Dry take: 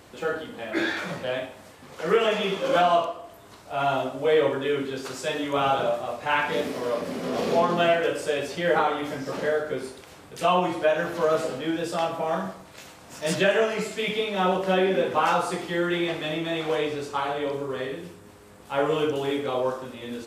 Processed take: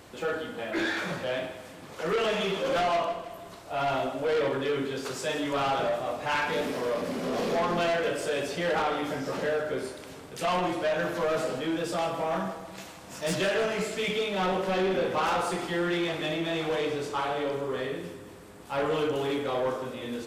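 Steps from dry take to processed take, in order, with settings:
soft clipping −23 dBFS, distortion −10 dB
echo with a time of its own for lows and highs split 340 Hz, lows 337 ms, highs 157 ms, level −13.5 dB

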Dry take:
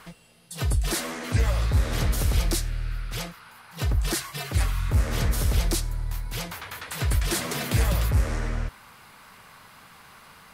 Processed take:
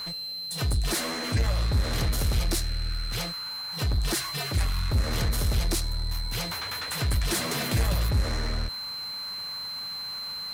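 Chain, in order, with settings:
steady tone 4,100 Hz −36 dBFS
power curve on the samples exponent 0.7
every ending faded ahead of time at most 170 dB per second
level −4 dB

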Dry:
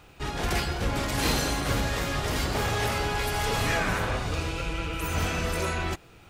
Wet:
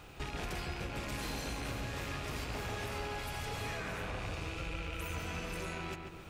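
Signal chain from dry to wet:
loose part that buzzes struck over −33 dBFS, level −22 dBFS
downward compressor 8 to 1, threshold −38 dBFS, peak gain reduction 16.5 dB
feedback echo with a low-pass in the loop 140 ms, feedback 54%, low-pass 2,800 Hz, level −4.5 dB

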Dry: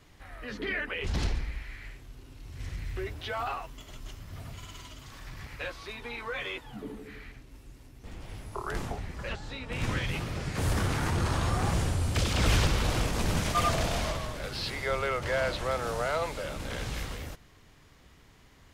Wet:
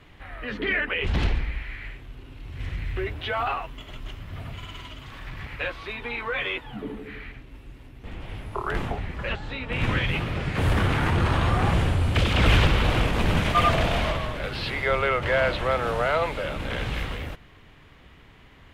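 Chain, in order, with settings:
high shelf with overshoot 4,100 Hz −10 dB, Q 1.5
level +6 dB

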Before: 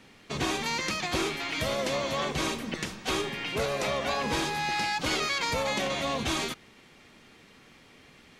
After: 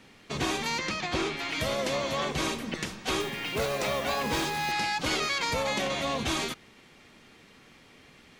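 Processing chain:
0:00.79–0:01.39: high-frequency loss of the air 64 metres
0:03.20–0:04.72: noise that follows the level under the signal 18 dB

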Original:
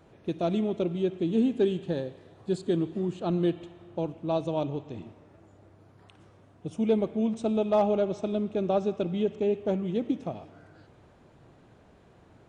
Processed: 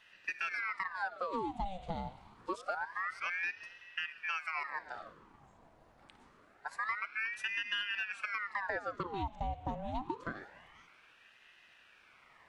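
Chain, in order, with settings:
high-pass filter 240 Hz 12 dB per octave
downward compressor 6 to 1, threshold −31 dBFS, peak gain reduction 11.5 dB
ring modulator whose carrier an LFO sweeps 1,300 Hz, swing 75%, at 0.26 Hz

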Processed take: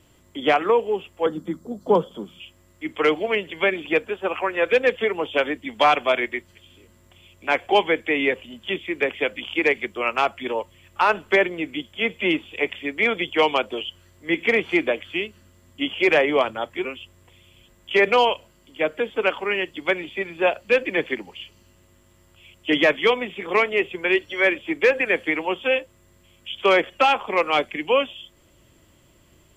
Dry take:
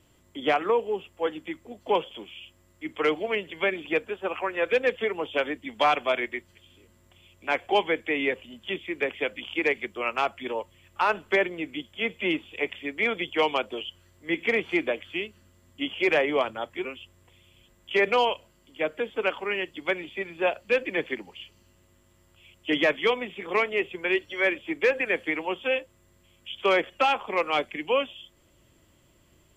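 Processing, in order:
0:01.26–0:02.40: drawn EQ curve 100 Hz 0 dB, 180 Hz +13 dB, 310 Hz +2 dB, 460 Hz +3 dB, 820 Hz −3 dB, 1,300 Hz +2 dB, 2,600 Hz −21 dB, 4,100 Hz +1 dB
level +5 dB

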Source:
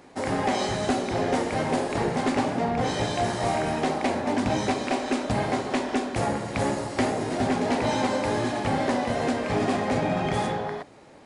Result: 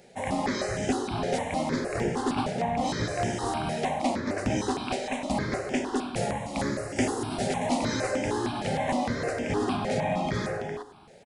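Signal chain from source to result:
high-shelf EQ 7,100 Hz +2 dB, from 0:06.96 +10 dB, from 0:08.11 +2.5 dB
repeating echo 103 ms, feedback 58%, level −17 dB
step-sequenced phaser 6.5 Hz 290–4,100 Hz

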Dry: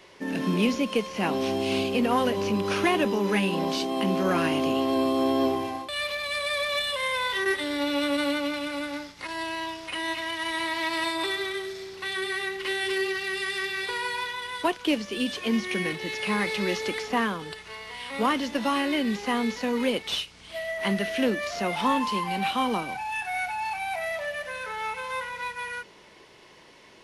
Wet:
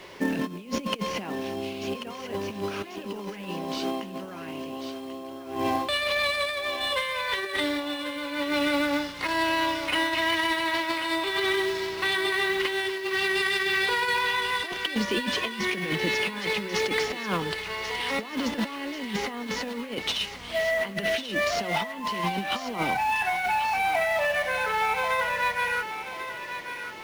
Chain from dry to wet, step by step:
compressor whose output falls as the input rises −31 dBFS, ratio −0.5
high-shelf EQ 6,500 Hz −7 dB
log-companded quantiser 6 bits
feedback echo with a high-pass in the loop 1,089 ms, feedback 47%, high-pass 700 Hz, level −8.5 dB
level +3.5 dB

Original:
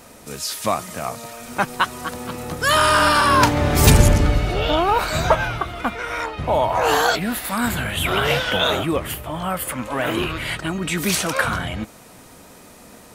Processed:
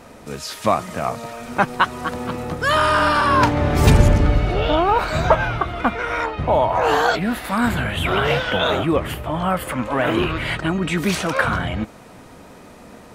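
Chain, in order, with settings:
in parallel at −1 dB: speech leveller within 5 dB 0.5 s
on the sum: low-pass filter 2,300 Hz 6 dB per octave
level −3.5 dB

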